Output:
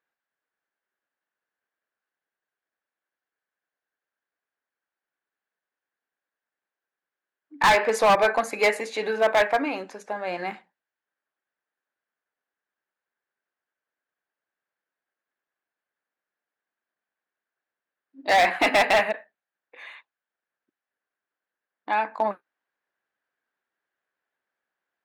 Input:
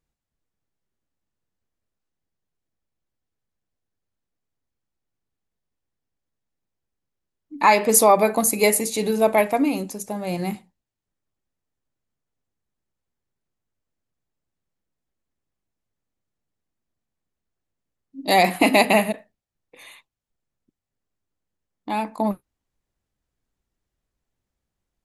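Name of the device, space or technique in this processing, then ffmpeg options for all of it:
megaphone: -af "highpass=540,lowpass=2.8k,equalizer=f=1.6k:t=o:w=0.42:g=11,asoftclip=type=hard:threshold=-16dB,volume=2dB"

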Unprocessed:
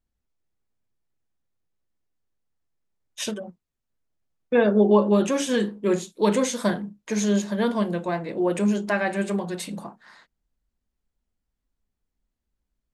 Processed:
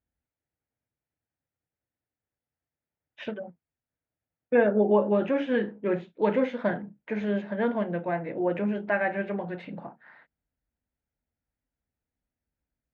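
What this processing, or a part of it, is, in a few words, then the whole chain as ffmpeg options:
bass cabinet: -af "highpass=77,equalizer=f=200:t=q:w=4:g=-7,equalizer=f=380:t=q:w=4:g=-6,equalizer=f=1.1k:t=q:w=4:g=-9,lowpass=f=2.3k:w=0.5412,lowpass=f=2.3k:w=1.3066"

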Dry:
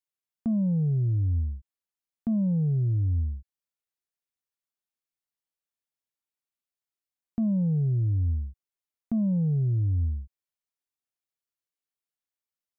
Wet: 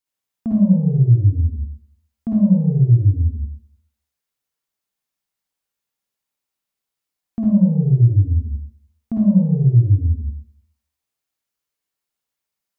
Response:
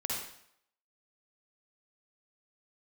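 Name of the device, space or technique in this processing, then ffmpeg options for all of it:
bathroom: -filter_complex "[1:a]atrim=start_sample=2205[a];[0:a][a]afir=irnorm=-1:irlink=0,volume=5.5dB"

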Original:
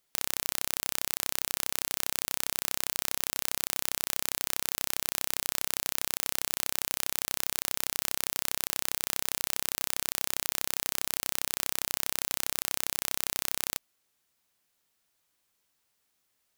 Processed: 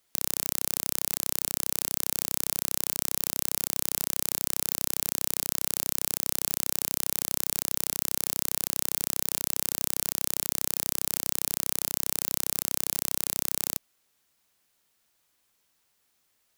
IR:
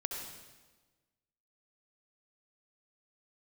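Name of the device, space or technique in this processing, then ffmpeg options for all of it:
one-band saturation: -filter_complex "[0:a]acrossover=split=280|5000[a][b][c];[b]asoftclip=type=tanh:threshold=-30.5dB[d];[a][d][c]amix=inputs=3:normalize=0,volume=4dB"

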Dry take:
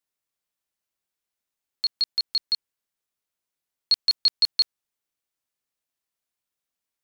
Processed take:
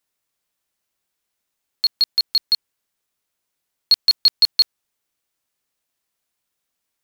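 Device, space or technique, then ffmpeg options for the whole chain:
parallel distortion: -filter_complex "[0:a]asplit=2[a][b];[b]asoftclip=type=hard:threshold=-25.5dB,volume=-6dB[c];[a][c]amix=inputs=2:normalize=0,volume=4.5dB"

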